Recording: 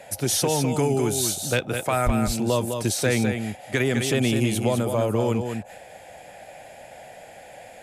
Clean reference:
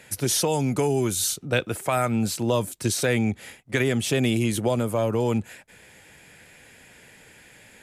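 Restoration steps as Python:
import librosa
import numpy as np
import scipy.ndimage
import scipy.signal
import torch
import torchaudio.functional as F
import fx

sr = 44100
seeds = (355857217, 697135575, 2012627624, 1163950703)

y = fx.fix_declip(x, sr, threshold_db=-12.0)
y = fx.fix_deplosive(y, sr, at_s=(2.05,))
y = fx.noise_reduce(y, sr, print_start_s=5.78, print_end_s=6.28, reduce_db=7.0)
y = fx.fix_echo_inverse(y, sr, delay_ms=206, level_db=-6.5)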